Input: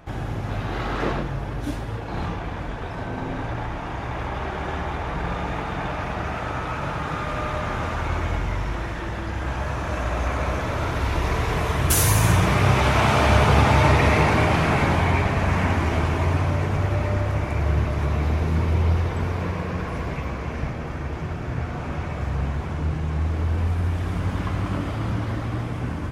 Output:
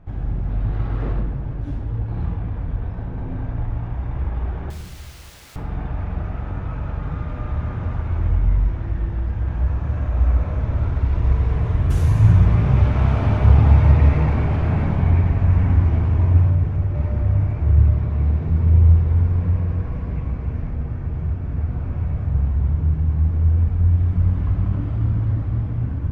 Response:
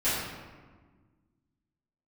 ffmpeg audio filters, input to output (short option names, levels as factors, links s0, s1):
-filter_complex "[0:a]aemphasis=mode=reproduction:type=riaa,asettb=1/sr,asplit=3[s0][s1][s2];[s0]atrim=end=4.704[s3];[s1]atrim=start=4.7:end=5.56,asetpts=PTS-STARTPTS,afade=t=in:d=0.004:c=qsin,afade=t=out:st=0.856:d=0.004:c=qsin,aeval=exprs='(mod(35.5*val(0)+1,2)-1)/35.5':c=same[s4];[s2]atrim=start=5.556[s5];[s3][s4]acrossfade=d=0.004:c1=hsin:c2=qsin[s6];[s6][s5]acrossfade=d=0.004:c1=qsin:c2=hsin,asettb=1/sr,asplit=3[s7][s8][s9];[s7]atrim=end=16.494[s10];[s8]atrim=start=16.49:end=16.95,asetpts=PTS-STARTPTS,afade=t=in:d=0.004:c=qsin,afade=t=out:st=0.456:d=0.004:c=qsin,acompressor=threshold=0.355:ratio=6[s11];[s9]atrim=start=16.946[s12];[s10][s11]acrossfade=d=0.004:c1=hsin:c2=qsin[s13];[s13][s12]acrossfade=d=0.004:c1=qsin:c2=hsin,asettb=1/sr,asplit=3[s14][s15][s16];[s14]atrim=end=17.894[s17];[s15]atrim=start=17.89:end=18.49,asetpts=PTS-STARTPTS,afade=t=in:d=0.004:c=qsin,afade=t=out:st=0.596:d=0.004:c=qsin,highpass=110,lowpass=7700[s18];[s16]atrim=start=18.486[s19];[s17][s18]acrossfade=d=0.004:c1=hsin:c2=qsin[s20];[s20][s19]acrossfade=d=0.004:c1=qsin:c2=hsin,asplit=2[s21][s22];[1:a]atrim=start_sample=2205,lowshelf=f=150:g=6.5[s23];[s22][s23]afir=irnorm=-1:irlink=0,volume=0.126[s24];[s21][s24]amix=inputs=2:normalize=0,volume=0.266"